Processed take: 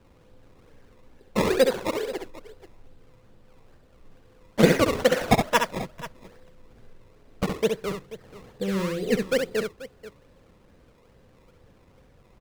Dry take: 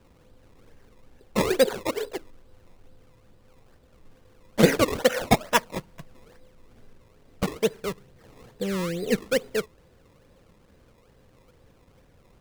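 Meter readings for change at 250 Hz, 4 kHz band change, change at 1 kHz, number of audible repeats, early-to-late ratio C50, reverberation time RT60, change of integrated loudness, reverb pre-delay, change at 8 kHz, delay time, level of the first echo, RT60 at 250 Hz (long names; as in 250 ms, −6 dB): +1.0 dB, −0.5 dB, +1.0 dB, 2, no reverb audible, no reverb audible, +0.5 dB, no reverb audible, −2.0 dB, 67 ms, −5.5 dB, no reverb audible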